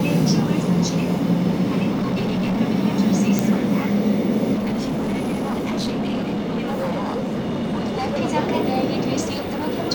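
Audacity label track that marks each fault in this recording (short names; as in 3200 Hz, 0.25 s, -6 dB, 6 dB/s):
1.920000	2.610000	clipped -18.5 dBFS
3.390000	3.390000	pop
4.540000	8.180000	clipped -20 dBFS
9.200000	9.660000	clipped -22 dBFS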